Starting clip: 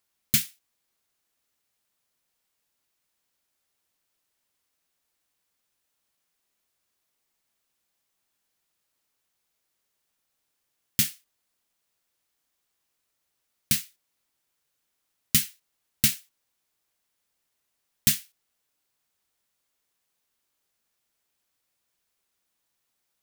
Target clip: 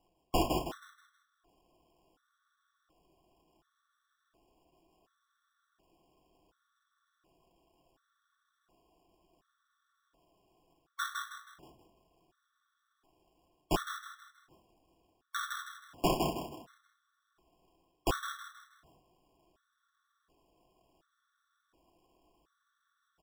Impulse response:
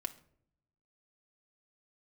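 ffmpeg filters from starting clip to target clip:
-filter_complex "[0:a]aemphasis=mode=production:type=cd,areverse,acompressor=threshold=-26dB:ratio=5,areverse,acrusher=samples=21:mix=1:aa=0.000001,asplit=6[link_01][link_02][link_03][link_04][link_05][link_06];[link_02]adelay=159,afreqshift=40,volume=-3.5dB[link_07];[link_03]adelay=318,afreqshift=80,volume=-12.4dB[link_08];[link_04]adelay=477,afreqshift=120,volume=-21.2dB[link_09];[link_05]adelay=636,afreqshift=160,volume=-30.1dB[link_10];[link_06]adelay=795,afreqshift=200,volume=-39dB[link_11];[link_01][link_07][link_08][link_09][link_10][link_11]amix=inputs=6:normalize=0[link_12];[1:a]atrim=start_sample=2205[link_13];[link_12][link_13]afir=irnorm=-1:irlink=0,afftfilt=real='re*gt(sin(2*PI*0.69*pts/sr)*(1-2*mod(floor(b*sr/1024/1100),2)),0)':imag='im*gt(sin(2*PI*0.69*pts/sr)*(1-2*mod(floor(b*sr/1024/1100),2)),0)':win_size=1024:overlap=0.75"

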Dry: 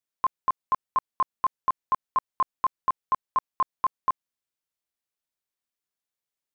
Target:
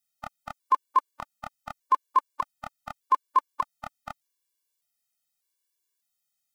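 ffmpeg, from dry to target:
ffmpeg -i in.wav -af "highshelf=frequency=2700:gain=12,afftfilt=real='re*gt(sin(2*PI*0.83*pts/sr)*(1-2*mod(floor(b*sr/1024/300),2)),0)':imag='im*gt(sin(2*PI*0.83*pts/sr)*(1-2*mod(floor(b*sr/1024/300),2)),0)':win_size=1024:overlap=0.75,volume=2dB" out.wav

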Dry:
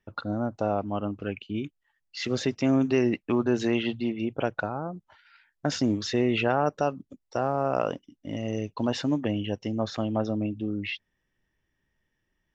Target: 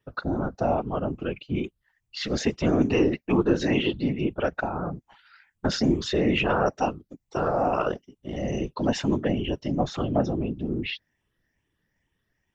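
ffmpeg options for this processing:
ffmpeg -i in.wav -af "afftfilt=real='re*pow(10,7/40*sin(2*PI*(0.64*log(max(b,1)*sr/1024/100)/log(2)-(2.3)*(pts-256)/sr)))':imag='im*pow(10,7/40*sin(2*PI*(0.64*log(max(b,1)*sr/1024/100)/log(2)-(2.3)*(pts-256)/sr)))':win_size=1024:overlap=0.75,afftfilt=real='hypot(re,im)*cos(2*PI*random(0))':imag='hypot(re,im)*sin(2*PI*random(1))':win_size=512:overlap=0.75,volume=7.5dB" out.wav

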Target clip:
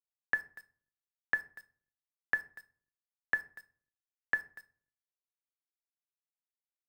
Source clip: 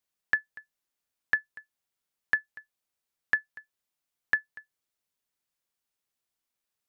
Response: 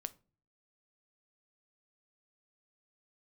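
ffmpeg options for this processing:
-filter_complex "[0:a]aemphasis=mode=reproduction:type=75kf,acrossover=split=350|830[link_01][link_02][link_03];[link_02]acontrast=32[link_04];[link_01][link_04][link_03]amix=inputs=3:normalize=0,acrusher=bits=8:mix=0:aa=0.000001[link_05];[1:a]atrim=start_sample=2205,asetrate=34398,aresample=44100[link_06];[link_05][link_06]afir=irnorm=-1:irlink=0,volume=-1.5dB"

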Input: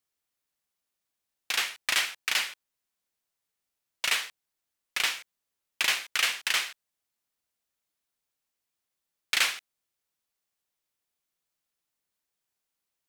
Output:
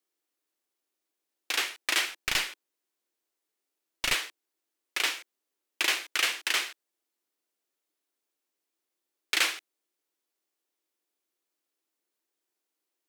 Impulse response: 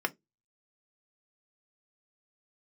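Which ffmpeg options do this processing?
-filter_complex "[0:a]highpass=frequency=330:width_type=q:width=3.5,asplit=3[link_01][link_02][link_03];[link_01]afade=type=out:start_time=2.09:duration=0.02[link_04];[link_02]aeval=exprs='0.178*(cos(1*acos(clip(val(0)/0.178,-1,1)))-cos(1*PI/2))+0.0447*(cos(2*acos(clip(val(0)/0.178,-1,1)))-cos(2*PI/2))':channel_layout=same,afade=type=in:start_time=2.09:duration=0.02,afade=type=out:start_time=4.13:duration=0.02[link_05];[link_03]afade=type=in:start_time=4.13:duration=0.02[link_06];[link_04][link_05][link_06]amix=inputs=3:normalize=0,volume=-1dB"

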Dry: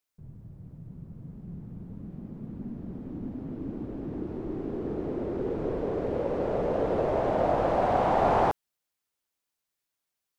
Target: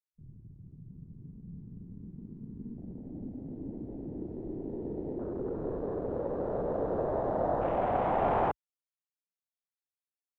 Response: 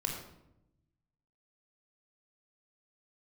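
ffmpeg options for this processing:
-af "afwtdn=0.0141,volume=-4.5dB"

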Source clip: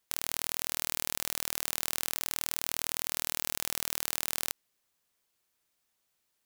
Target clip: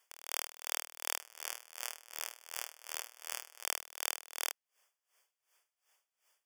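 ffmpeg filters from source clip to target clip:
ffmpeg -i in.wav -filter_complex "[0:a]highpass=frequency=490:width=0.5412,highpass=frequency=490:width=1.3066,highshelf=frequency=10000:gain=-7.5,alimiter=limit=-15.5dB:level=0:latency=1:release=280,asettb=1/sr,asplit=3[link_01][link_02][link_03];[link_01]atrim=end=1.184[link_04];[link_02]atrim=start=1.18:end=3.64,asetpts=PTS-STARTPTS,afade=type=in:duration=0.004:curve=qsin,afade=type=out:start_time=2.456:duration=0.004:curve=qsin,flanger=delay=6.5:depth=9.9:regen=-51:speed=1.3:shape=sinusoidal[link_05];[link_03]atrim=start=3.636[link_06];[link_04][link_05]acrossfade=duration=0.004:curve1=hsin:curve2=qsin[link_07];[link_07][link_06]acrossfade=duration=0.004:curve1=qsin:curve2=hsin,asuperstop=centerf=4000:order=12:qfactor=4.1,aeval=exprs='val(0)*pow(10,-21*(0.5-0.5*cos(2*PI*2.7*n/s))/20)':channel_layout=same,volume=9.5dB" out.wav

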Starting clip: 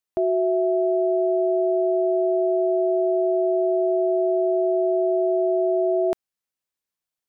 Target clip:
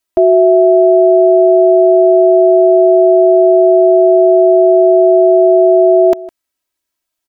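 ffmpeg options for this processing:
ffmpeg -i in.wav -filter_complex "[0:a]aecho=1:1:3.1:0.94,asplit=2[link_01][link_02];[link_02]adelay=157.4,volume=-19dB,highshelf=frequency=4000:gain=-3.54[link_03];[link_01][link_03]amix=inputs=2:normalize=0,volume=8dB" out.wav

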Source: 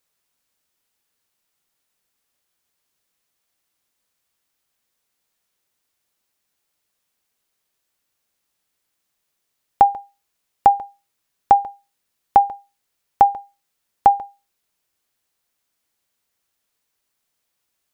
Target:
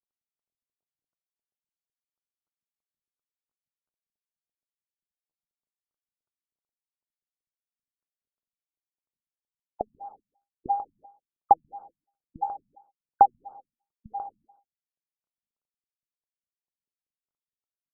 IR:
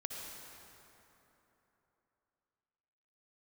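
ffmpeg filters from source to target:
-filter_complex "[0:a]bass=frequency=250:gain=-8,treble=frequency=4000:gain=5,acrusher=bits=9:mix=0:aa=0.000001,flanger=delay=4.5:depth=4.1:regen=83:speed=0.71:shape=triangular,asplit=2[link_01][link_02];[1:a]atrim=start_sample=2205,afade=type=out:start_time=0.44:duration=0.01,atrim=end_sample=19845[link_03];[link_02][link_03]afir=irnorm=-1:irlink=0,volume=-16dB[link_04];[link_01][link_04]amix=inputs=2:normalize=0,afftfilt=real='re*lt(b*sr/1024,240*pow(1600/240,0.5+0.5*sin(2*PI*2.9*pts/sr)))':imag='im*lt(b*sr/1024,240*pow(1600/240,0.5+0.5*sin(2*PI*2.9*pts/sr)))':win_size=1024:overlap=0.75"

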